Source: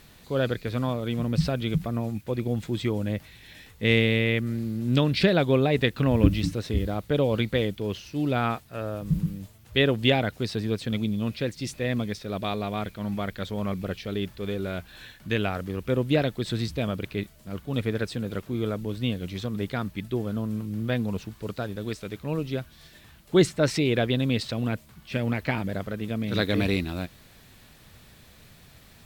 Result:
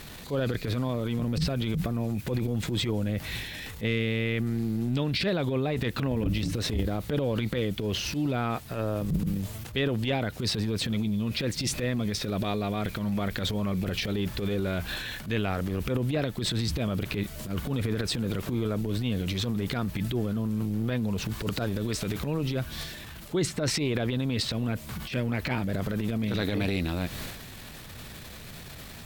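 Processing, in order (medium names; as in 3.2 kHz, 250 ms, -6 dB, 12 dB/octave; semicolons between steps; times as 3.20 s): transient shaper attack -12 dB, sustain +8 dB; compression 5:1, threshold -35 dBFS, peak gain reduction 17 dB; trim +9 dB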